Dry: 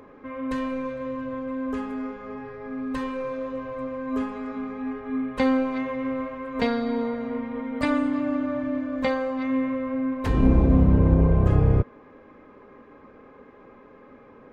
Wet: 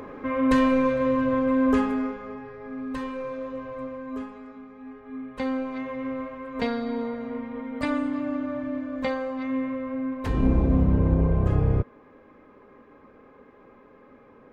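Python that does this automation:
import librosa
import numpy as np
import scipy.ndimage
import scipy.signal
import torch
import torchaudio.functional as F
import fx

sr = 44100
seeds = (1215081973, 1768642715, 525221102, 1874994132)

y = fx.gain(x, sr, db=fx.line((1.76, 8.5), (2.41, -2.5), (3.83, -2.5), (4.67, -12.5), (5.99, -3.0)))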